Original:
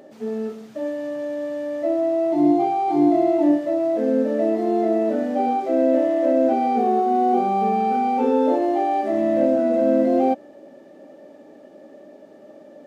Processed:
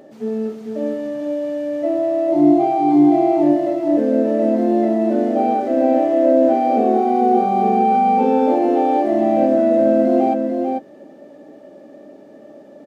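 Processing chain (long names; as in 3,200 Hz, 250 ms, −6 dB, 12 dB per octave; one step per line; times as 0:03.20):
low-shelf EQ 410 Hz +4.5 dB
double-tracking delay 14 ms −13 dB
single-tap delay 445 ms −5 dB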